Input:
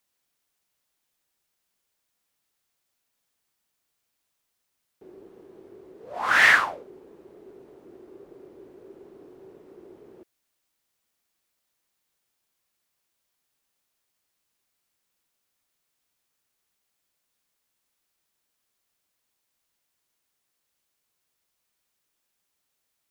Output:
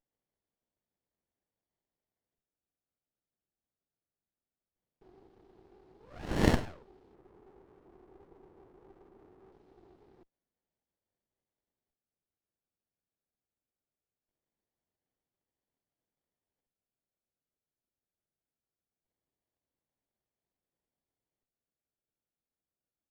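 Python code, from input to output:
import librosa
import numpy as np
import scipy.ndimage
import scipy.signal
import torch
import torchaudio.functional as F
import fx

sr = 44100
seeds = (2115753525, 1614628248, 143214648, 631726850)

y = fx.cheby_harmonics(x, sr, harmonics=(2, 3, 4), levels_db=(-16, -16, -22), full_scale_db=-4.0)
y = fx.filter_lfo_lowpass(y, sr, shape='square', hz=0.21, low_hz=900.0, high_hz=4400.0, q=2.5)
y = fx.running_max(y, sr, window=33)
y = F.gain(torch.from_numpy(y), -5.0).numpy()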